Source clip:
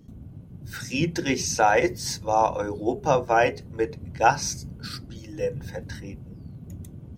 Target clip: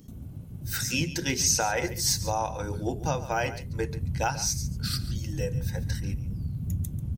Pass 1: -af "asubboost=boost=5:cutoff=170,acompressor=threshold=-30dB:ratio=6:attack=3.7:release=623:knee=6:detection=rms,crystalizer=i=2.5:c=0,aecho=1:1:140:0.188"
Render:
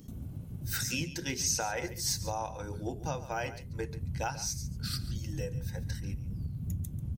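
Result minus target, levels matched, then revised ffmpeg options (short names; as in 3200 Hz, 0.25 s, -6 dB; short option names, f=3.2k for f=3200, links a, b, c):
compressor: peak gain reduction +7 dB
-af "asubboost=boost=5:cutoff=170,acompressor=threshold=-21.5dB:ratio=6:attack=3.7:release=623:knee=6:detection=rms,crystalizer=i=2.5:c=0,aecho=1:1:140:0.188"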